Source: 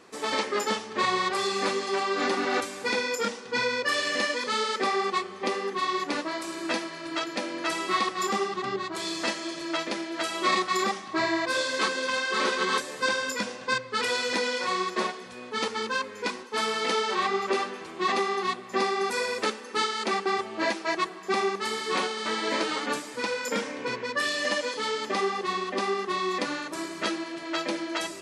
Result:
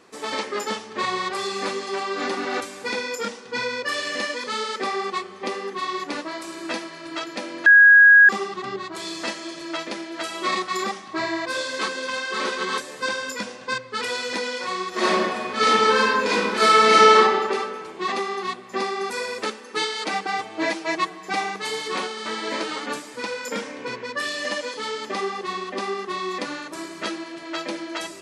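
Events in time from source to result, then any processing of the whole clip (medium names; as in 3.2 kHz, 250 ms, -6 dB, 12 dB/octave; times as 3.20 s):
7.66–8.29 s: bleep 1.65 kHz -7.5 dBFS
14.89–17.15 s: reverb throw, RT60 1.6 s, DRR -10.5 dB
19.75–21.88 s: comb 6.5 ms, depth 98%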